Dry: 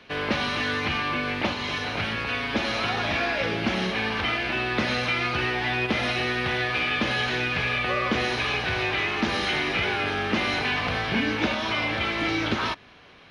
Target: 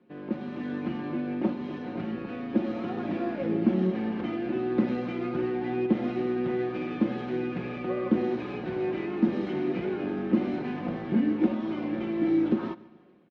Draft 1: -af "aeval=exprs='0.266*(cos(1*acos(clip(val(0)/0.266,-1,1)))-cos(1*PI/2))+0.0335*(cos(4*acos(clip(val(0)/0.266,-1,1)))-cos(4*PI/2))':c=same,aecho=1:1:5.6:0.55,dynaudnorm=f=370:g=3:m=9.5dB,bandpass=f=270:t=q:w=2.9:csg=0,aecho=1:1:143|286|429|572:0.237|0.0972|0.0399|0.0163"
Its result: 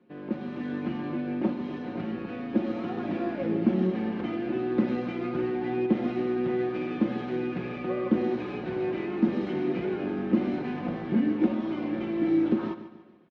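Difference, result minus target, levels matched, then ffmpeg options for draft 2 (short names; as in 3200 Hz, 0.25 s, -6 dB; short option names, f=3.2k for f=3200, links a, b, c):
echo-to-direct +8 dB
-af "aeval=exprs='0.266*(cos(1*acos(clip(val(0)/0.266,-1,1)))-cos(1*PI/2))+0.0335*(cos(4*acos(clip(val(0)/0.266,-1,1)))-cos(4*PI/2))':c=same,aecho=1:1:5.6:0.55,dynaudnorm=f=370:g=3:m=9.5dB,bandpass=f=270:t=q:w=2.9:csg=0,aecho=1:1:143|286|429:0.0944|0.0387|0.0159"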